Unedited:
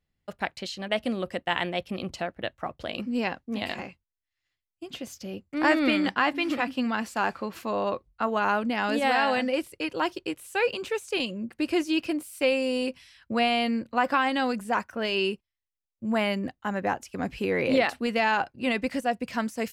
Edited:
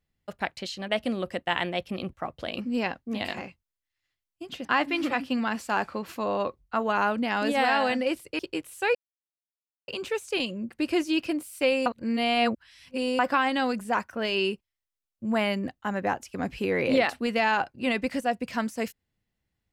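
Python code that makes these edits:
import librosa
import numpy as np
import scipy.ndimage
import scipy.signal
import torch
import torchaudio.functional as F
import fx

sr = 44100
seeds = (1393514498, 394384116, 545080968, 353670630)

y = fx.edit(x, sr, fx.cut(start_s=2.13, length_s=0.41),
    fx.cut(start_s=5.06, length_s=1.06),
    fx.cut(start_s=9.86, length_s=0.26),
    fx.insert_silence(at_s=10.68, length_s=0.93),
    fx.reverse_span(start_s=12.66, length_s=1.33), tone=tone)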